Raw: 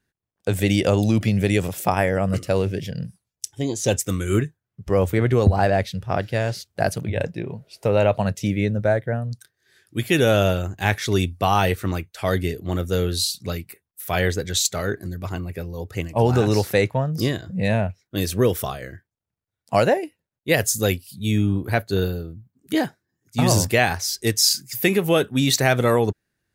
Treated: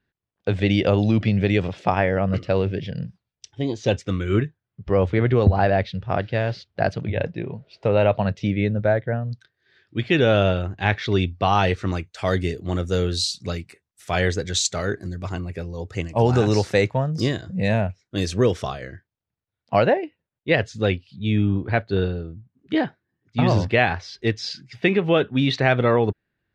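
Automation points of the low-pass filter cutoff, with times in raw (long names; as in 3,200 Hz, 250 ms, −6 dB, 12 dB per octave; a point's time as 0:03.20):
low-pass filter 24 dB per octave
0:11.26 4,200 Hz
0:12.10 7,500 Hz
0:18.17 7,500 Hz
0:19.96 3,600 Hz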